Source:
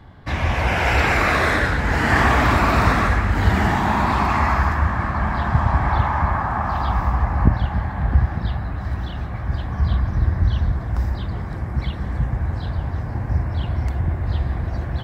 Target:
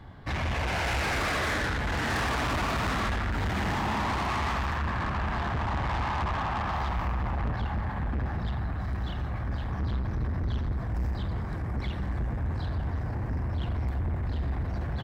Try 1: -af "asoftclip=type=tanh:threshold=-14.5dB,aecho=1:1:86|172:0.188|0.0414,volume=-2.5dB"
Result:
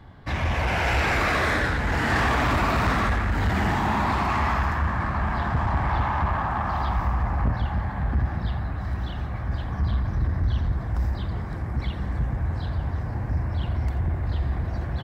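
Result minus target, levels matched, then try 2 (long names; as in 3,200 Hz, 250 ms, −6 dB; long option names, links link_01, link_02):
soft clipping: distortion −7 dB
-af "asoftclip=type=tanh:threshold=-24dB,aecho=1:1:86|172:0.188|0.0414,volume=-2.5dB"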